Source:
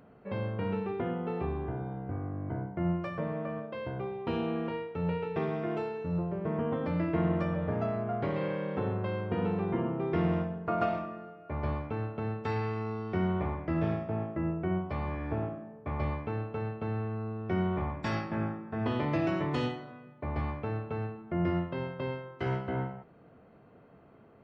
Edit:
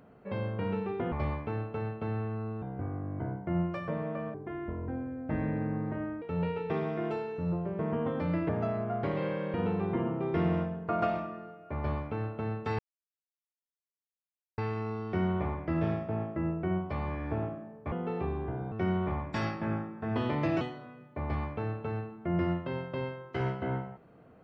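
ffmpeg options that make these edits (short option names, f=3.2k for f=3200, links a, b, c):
-filter_complex "[0:a]asplit=11[a][b][c][d][e][f][g][h][i][j][k];[a]atrim=end=1.122[l];[b]atrim=start=15.918:end=17.422[m];[c]atrim=start=1.918:end=3.644[n];[d]atrim=start=3.64:end=4.88,asetpts=PTS-STARTPTS,asetrate=29106,aresample=44100[o];[e]atrim=start=4.876:end=7.152[p];[f]atrim=start=7.678:end=8.732[q];[g]atrim=start=9.328:end=12.58,asetpts=PTS-STARTPTS,afade=t=out:st=3.248:d=0.004:c=hsin,apad=pad_dur=1.79[r];[h]atrim=start=12.58:end=15.922,asetpts=PTS-STARTPTS,afade=t=in:d=0.004:c=hsin[s];[i]atrim=start=1.118:end=1.922[t];[j]atrim=start=17.418:end=19.312[u];[k]atrim=start=19.668[v];[l][m]acrossfade=d=0.004:c1=hsin:c2=hsin[w];[w][n]acrossfade=d=0.004:c1=hsin:c2=hsin[x];[x][o]acrossfade=d=0.004:c1=hsin:c2=hsin[y];[y][p]acrossfade=d=0.004:c1=hsin:c2=hsin[z];[z][q]acrossfade=d=0.004:c1=hsin:c2=hsin[aa];[r][s]concat=n=2:v=0:a=1[ab];[aa][ab]acrossfade=d=0.004:c1=hsin:c2=hsin[ac];[ac][t]acrossfade=d=0.004:c1=hsin:c2=hsin[ad];[ad][u]acrossfade=d=0.004:c1=hsin:c2=hsin[ae];[ae][v]acrossfade=d=0.004:c1=hsin:c2=hsin"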